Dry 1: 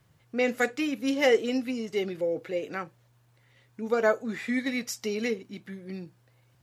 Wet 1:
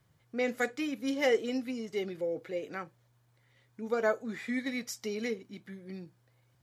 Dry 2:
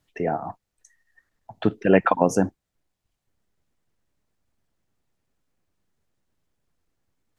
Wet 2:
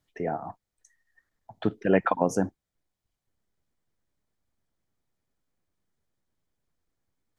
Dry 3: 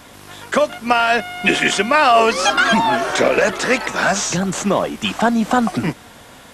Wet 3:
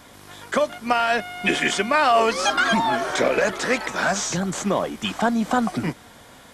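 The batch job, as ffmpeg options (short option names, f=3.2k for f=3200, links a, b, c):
-af "bandreject=f=2.7k:w=14,volume=-5dB"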